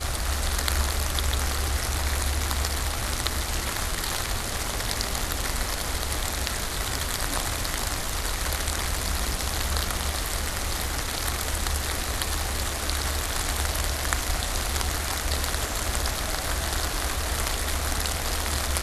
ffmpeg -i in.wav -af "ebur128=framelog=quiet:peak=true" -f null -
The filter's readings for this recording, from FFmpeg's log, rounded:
Integrated loudness:
  I:         -27.1 LUFS
  Threshold: -37.1 LUFS
Loudness range:
  LRA:         1.0 LU
  Threshold: -47.2 LUFS
  LRA low:   -27.7 LUFS
  LRA high:  -26.7 LUFS
True peak:
  Peak:       -3.8 dBFS